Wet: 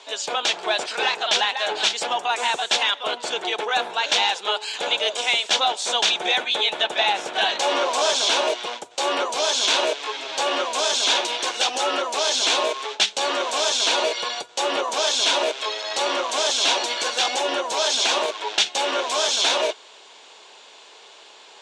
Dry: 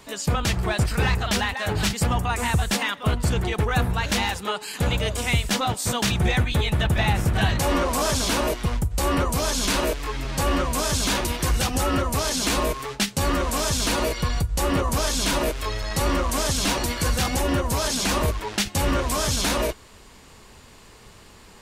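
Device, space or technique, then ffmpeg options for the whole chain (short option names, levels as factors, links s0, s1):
phone speaker on a table: -af "highpass=f=460:w=0.5412,highpass=f=460:w=1.3066,equalizer=f=510:t=q:w=4:g=-4,equalizer=f=1200:t=q:w=4:g=-7,equalizer=f=1900:t=q:w=4:g=-7,equalizer=f=3500:t=q:w=4:g=6,equalizer=f=4900:t=q:w=4:g=-4,lowpass=f=6600:w=0.5412,lowpass=f=6600:w=1.3066,volume=2"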